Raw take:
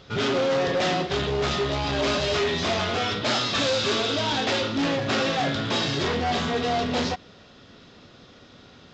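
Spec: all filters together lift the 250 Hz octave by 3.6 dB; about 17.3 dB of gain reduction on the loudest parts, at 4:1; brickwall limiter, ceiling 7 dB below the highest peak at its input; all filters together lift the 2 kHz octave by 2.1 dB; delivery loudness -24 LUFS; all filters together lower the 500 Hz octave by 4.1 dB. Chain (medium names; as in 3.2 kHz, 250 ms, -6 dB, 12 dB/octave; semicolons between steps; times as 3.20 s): peaking EQ 250 Hz +6 dB; peaking EQ 500 Hz -7 dB; peaking EQ 2 kHz +3 dB; compression 4:1, threshold -42 dBFS; trim +19.5 dB; peak limiter -16.5 dBFS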